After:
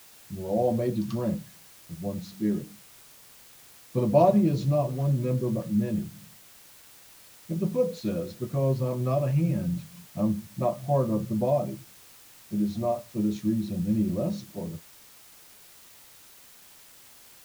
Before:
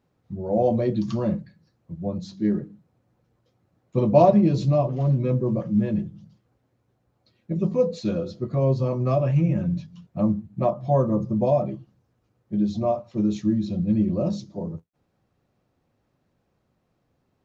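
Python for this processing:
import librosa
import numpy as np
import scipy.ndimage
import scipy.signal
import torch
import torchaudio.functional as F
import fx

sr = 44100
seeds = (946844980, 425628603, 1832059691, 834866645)

y = fx.quant_dither(x, sr, seeds[0], bits=8, dither='triangular')
y = y * librosa.db_to_amplitude(-4.0)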